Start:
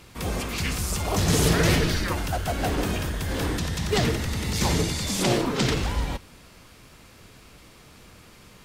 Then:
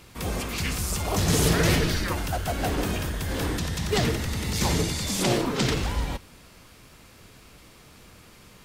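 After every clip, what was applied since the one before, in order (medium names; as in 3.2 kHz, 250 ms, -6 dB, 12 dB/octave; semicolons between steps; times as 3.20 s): treble shelf 11 kHz +3.5 dB; trim -1 dB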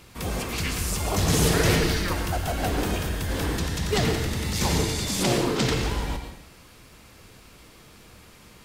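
plate-style reverb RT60 0.63 s, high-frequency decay 0.95×, pre-delay 95 ms, DRR 6.5 dB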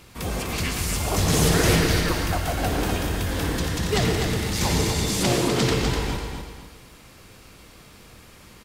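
feedback delay 249 ms, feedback 30%, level -6 dB; trim +1 dB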